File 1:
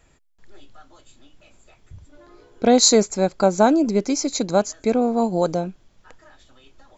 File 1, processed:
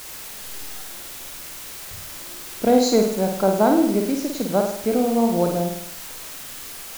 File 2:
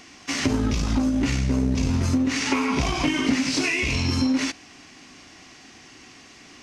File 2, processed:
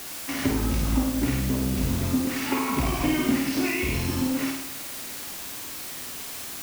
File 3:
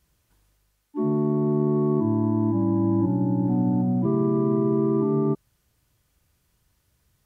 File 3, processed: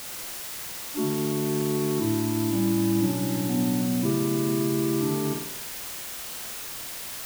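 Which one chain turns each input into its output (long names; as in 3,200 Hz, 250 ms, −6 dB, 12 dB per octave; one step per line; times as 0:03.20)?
low-pass filter 1,600 Hz 6 dB per octave
bit-depth reduction 6 bits, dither triangular
on a send: flutter between parallel walls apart 8.9 metres, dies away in 0.66 s
on the sum: level −2 dB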